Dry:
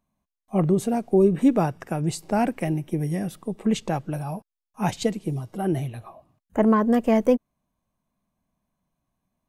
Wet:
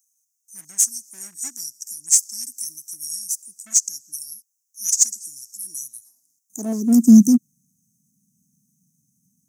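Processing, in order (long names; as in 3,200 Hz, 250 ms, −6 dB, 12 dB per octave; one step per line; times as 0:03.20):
gain on one half-wave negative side −3 dB
elliptic band-stop filter 250–5,800 Hz, stop band 40 dB
high shelf with overshoot 4,600 Hz +11.5 dB, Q 3
in parallel at −5.5 dB: hard clipping −20.5 dBFS, distortion −13 dB
on the sum: high-pass filter sweep 1,900 Hz → 150 Hz, 0:05.96–0:07.33
level +4.5 dB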